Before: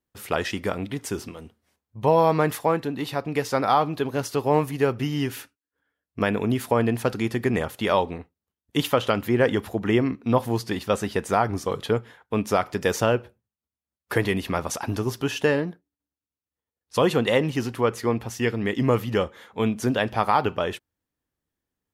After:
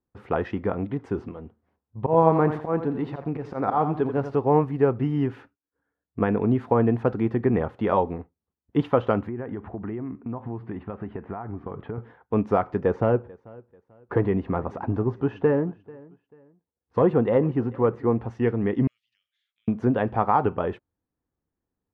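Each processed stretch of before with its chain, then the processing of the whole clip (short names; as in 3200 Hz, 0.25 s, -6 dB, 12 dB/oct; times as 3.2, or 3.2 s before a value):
1.99–4.35 auto swell 0.102 s + lo-fi delay 86 ms, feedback 35%, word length 7-bit, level -9 dB
9.27–11.98 LPF 2700 Hz 24 dB/oct + bell 500 Hz -7 dB 0.28 oct + compressor 8:1, threshold -30 dBFS
12.8–18.19 high shelf 2900 Hz -11 dB + hard clip -12.5 dBFS + feedback echo 0.44 s, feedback 32%, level -23 dB
18.87–19.68 inverse Chebyshev high-pass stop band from 1000 Hz, stop band 60 dB + compressor, threshold -56 dBFS
whole clip: LPF 1100 Hz 12 dB/oct; notch 600 Hz, Q 12; gain +2 dB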